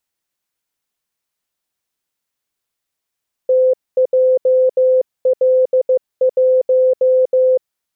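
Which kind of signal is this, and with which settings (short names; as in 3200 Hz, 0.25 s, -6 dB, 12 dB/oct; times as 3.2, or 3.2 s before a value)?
Morse "TJL1" 15 wpm 514 Hz -9 dBFS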